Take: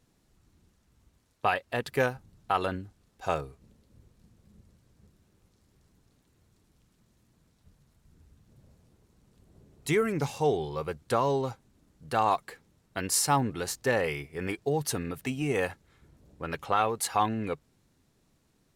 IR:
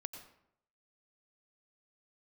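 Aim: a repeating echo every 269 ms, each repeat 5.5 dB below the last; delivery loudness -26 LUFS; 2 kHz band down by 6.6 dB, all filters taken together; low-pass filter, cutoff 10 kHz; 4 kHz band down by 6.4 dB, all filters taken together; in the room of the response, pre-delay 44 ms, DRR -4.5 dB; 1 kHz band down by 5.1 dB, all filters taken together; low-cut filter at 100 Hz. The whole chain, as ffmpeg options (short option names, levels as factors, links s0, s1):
-filter_complex "[0:a]highpass=100,lowpass=10000,equalizer=f=1000:t=o:g=-5.5,equalizer=f=2000:t=o:g=-5,equalizer=f=4000:t=o:g=-7,aecho=1:1:269|538|807|1076|1345|1614|1883:0.531|0.281|0.149|0.079|0.0419|0.0222|0.0118,asplit=2[s0][s1];[1:a]atrim=start_sample=2205,adelay=44[s2];[s1][s2]afir=irnorm=-1:irlink=0,volume=2.24[s3];[s0][s3]amix=inputs=2:normalize=0,volume=1.06"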